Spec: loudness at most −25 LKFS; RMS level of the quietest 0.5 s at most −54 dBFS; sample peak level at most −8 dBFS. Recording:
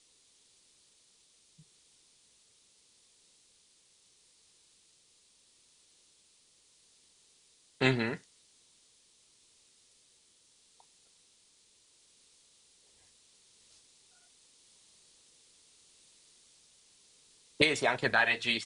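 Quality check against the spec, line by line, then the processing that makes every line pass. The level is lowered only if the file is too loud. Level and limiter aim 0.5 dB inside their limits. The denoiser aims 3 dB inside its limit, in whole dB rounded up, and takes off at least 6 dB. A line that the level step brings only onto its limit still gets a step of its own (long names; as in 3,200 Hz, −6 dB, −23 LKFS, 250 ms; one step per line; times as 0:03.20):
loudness −28.5 LKFS: in spec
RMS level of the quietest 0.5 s −66 dBFS: in spec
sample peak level −9.0 dBFS: in spec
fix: no processing needed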